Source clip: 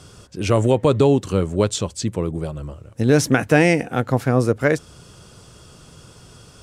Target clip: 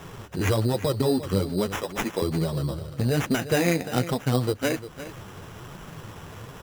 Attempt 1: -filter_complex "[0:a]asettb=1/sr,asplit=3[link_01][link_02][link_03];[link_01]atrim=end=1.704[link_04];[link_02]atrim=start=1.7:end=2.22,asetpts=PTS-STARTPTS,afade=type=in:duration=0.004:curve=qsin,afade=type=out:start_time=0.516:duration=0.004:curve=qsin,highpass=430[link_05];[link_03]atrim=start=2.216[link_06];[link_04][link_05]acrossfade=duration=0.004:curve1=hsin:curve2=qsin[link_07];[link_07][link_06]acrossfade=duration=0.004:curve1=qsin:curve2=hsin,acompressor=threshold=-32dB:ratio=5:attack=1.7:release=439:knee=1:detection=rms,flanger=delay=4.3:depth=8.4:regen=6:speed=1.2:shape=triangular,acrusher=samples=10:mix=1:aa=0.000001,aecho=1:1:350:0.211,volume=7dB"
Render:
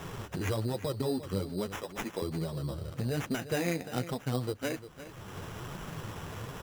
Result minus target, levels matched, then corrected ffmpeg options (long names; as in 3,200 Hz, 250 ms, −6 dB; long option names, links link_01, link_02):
downward compressor: peak gain reduction +9 dB
-filter_complex "[0:a]asettb=1/sr,asplit=3[link_01][link_02][link_03];[link_01]atrim=end=1.704[link_04];[link_02]atrim=start=1.7:end=2.22,asetpts=PTS-STARTPTS,afade=type=in:duration=0.004:curve=qsin,afade=type=out:start_time=0.516:duration=0.004:curve=qsin,highpass=430[link_05];[link_03]atrim=start=2.216[link_06];[link_04][link_05]acrossfade=duration=0.004:curve1=hsin:curve2=qsin[link_07];[link_07][link_06]acrossfade=duration=0.004:curve1=qsin:curve2=hsin,acompressor=threshold=-21dB:ratio=5:attack=1.7:release=439:knee=1:detection=rms,flanger=delay=4.3:depth=8.4:regen=6:speed=1.2:shape=triangular,acrusher=samples=10:mix=1:aa=0.000001,aecho=1:1:350:0.211,volume=7dB"